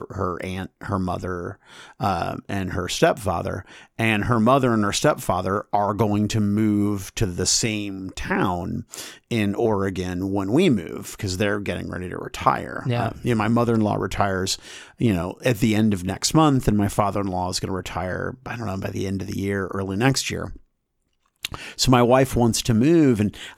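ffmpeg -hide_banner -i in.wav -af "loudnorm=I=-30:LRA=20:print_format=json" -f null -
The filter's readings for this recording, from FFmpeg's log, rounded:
"input_i" : "-22.0",
"input_tp" : "-2.5",
"input_lra" : "5.9",
"input_thresh" : "-32.3",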